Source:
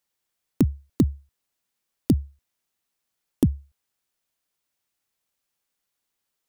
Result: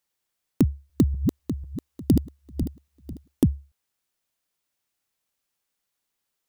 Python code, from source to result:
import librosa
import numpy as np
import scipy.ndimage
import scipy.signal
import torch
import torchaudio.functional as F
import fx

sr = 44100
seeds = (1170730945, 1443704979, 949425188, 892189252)

y = fx.reverse_delay_fb(x, sr, ms=248, feedback_pct=54, wet_db=-4.0, at=(0.65, 3.56))